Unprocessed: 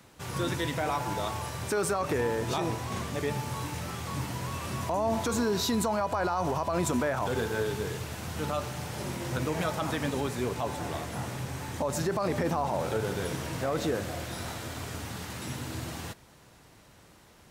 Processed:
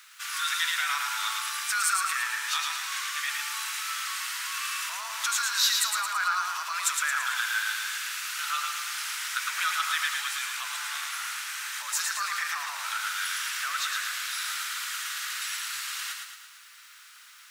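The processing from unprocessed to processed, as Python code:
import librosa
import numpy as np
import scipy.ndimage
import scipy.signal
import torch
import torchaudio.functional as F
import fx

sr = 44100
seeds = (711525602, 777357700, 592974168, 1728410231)

p1 = scipy.signal.sosfilt(scipy.signal.ellip(4, 1.0, 80, 1300.0, 'highpass', fs=sr, output='sos'), x)
p2 = fx.dmg_noise_colour(p1, sr, seeds[0], colour='blue', level_db=-74.0)
p3 = p2 + fx.echo_feedback(p2, sr, ms=111, feedback_pct=52, wet_db=-4, dry=0)
y = p3 * 10.0 ** (8.5 / 20.0)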